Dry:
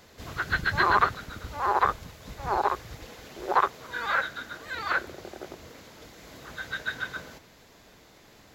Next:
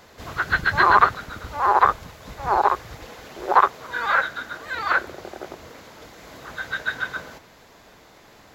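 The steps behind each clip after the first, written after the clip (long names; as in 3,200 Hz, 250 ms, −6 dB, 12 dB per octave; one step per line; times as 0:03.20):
parametric band 980 Hz +5.5 dB 2.1 octaves
level +2 dB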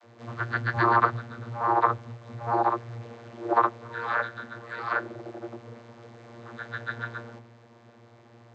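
channel vocoder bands 32, saw 117 Hz
level −5 dB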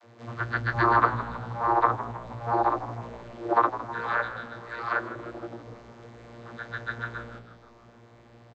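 echo with shifted repeats 158 ms, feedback 58%, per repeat −59 Hz, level −13.5 dB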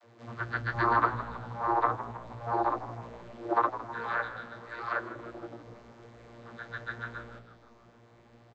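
flanger 0.81 Hz, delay 1.4 ms, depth 5.7 ms, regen +73%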